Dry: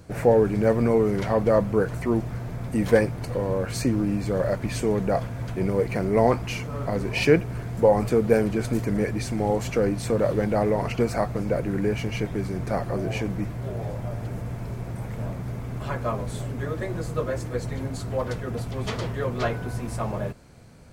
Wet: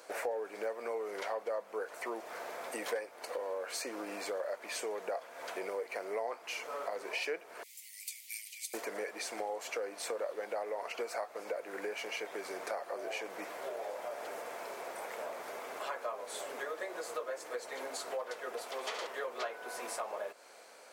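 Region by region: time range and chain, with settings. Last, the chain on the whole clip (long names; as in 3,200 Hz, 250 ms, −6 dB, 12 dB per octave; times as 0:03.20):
0:07.63–0:08.74: Butterworth high-pass 2,000 Hz 96 dB per octave + first difference
0:18.65–0:19.07: high-pass filter 230 Hz + flutter between parallel walls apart 11.9 metres, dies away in 0.63 s
whole clip: high-pass filter 490 Hz 24 dB per octave; downward compressor 4 to 1, threshold −40 dBFS; level +2.5 dB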